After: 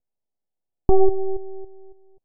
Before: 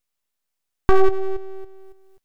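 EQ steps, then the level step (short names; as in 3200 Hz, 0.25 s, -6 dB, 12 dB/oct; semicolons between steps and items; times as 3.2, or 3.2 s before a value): steep low-pass 850 Hz 48 dB/oct; 0.0 dB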